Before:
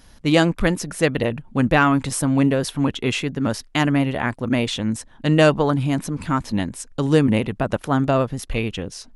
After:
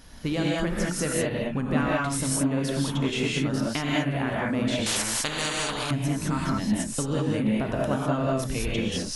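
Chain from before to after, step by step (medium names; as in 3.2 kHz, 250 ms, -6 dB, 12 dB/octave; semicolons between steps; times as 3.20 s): compression 6:1, threshold -28 dBFS, peak gain reduction 17.5 dB; gated-style reverb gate 230 ms rising, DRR -4.5 dB; 4.86–5.91 s: spectrum-flattening compressor 4:1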